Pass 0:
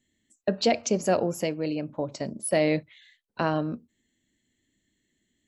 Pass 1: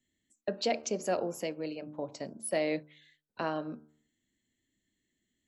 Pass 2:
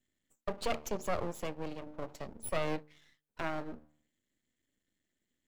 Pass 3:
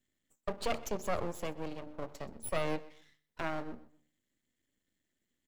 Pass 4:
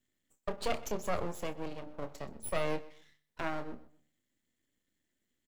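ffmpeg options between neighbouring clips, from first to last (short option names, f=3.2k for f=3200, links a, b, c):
-filter_complex "[0:a]bandreject=f=75.33:t=h:w=4,bandreject=f=150.66:t=h:w=4,bandreject=f=225.99:t=h:w=4,bandreject=f=301.32:t=h:w=4,bandreject=f=376.65:t=h:w=4,bandreject=f=451.98:t=h:w=4,bandreject=f=527.31:t=h:w=4,bandreject=f=602.64:t=h:w=4,bandreject=f=677.97:t=h:w=4,bandreject=f=753.3:t=h:w=4,bandreject=f=828.63:t=h:w=4,bandreject=f=903.96:t=h:w=4,bandreject=f=979.29:t=h:w=4,bandreject=f=1.05462k:t=h:w=4,bandreject=f=1.12995k:t=h:w=4,bandreject=f=1.20528k:t=h:w=4,bandreject=f=1.28061k:t=h:w=4,bandreject=f=1.35594k:t=h:w=4,bandreject=f=1.43127k:t=h:w=4,bandreject=f=1.5066k:t=h:w=4,bandreject=f=1.58193k:t=h:w=4,acrossover=split=210[a][b];[a]acompressor=threshold=-46dB:ratio=6[c];[c][b]amix=inputs=2:normalize=0,volume=-6.5dB"
-af "equalizer=f=4.9k:w=2.4:g=-6,aeval=exprs='max(val(0),0)':c=same,volume=1dB"
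-af "aecho=1:1:126|252:0.106|0.0307"
-filter_complex "[0:a]asplit=2[a][b];[b]adelay=28,volume=-11dB[c];[a][c]amix=inputs=2:normalize=0"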